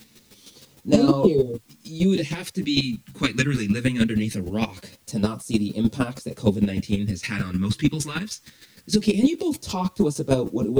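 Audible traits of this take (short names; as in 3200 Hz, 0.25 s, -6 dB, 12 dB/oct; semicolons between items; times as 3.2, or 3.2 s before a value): phasing stages 2, 0.22 Hz, lowest notch 640–1900 Hz; a quantiser's noise floor 10-bit, dither triangular; chopped level 6.5 Hz, depth 65%, duty 15%; a shimmering, thickened sound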